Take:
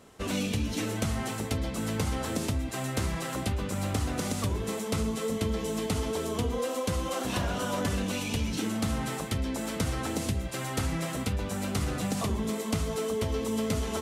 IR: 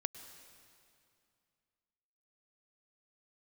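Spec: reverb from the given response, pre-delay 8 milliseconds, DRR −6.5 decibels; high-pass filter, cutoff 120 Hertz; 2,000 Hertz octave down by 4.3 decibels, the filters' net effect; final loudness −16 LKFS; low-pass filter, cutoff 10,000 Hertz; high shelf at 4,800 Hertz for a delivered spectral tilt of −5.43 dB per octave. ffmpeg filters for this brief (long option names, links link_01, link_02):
-filter_complex "[0:a]highpass=120,lowpass=10000,equalizer=frequency=2000:width_type=o:gain=-4.5,highshelf=frequency=4800:gain=-6,asplit=2[link_01][link_02];[1:a]atrim=start_sample=2205,adelay=8[link_03];[link_02][link_03]afir=irnorm=-1:irlink=0,volume=7dB[link_04];[link_01][link_04]amix=inputs=2:normalize=0,volume=10dB"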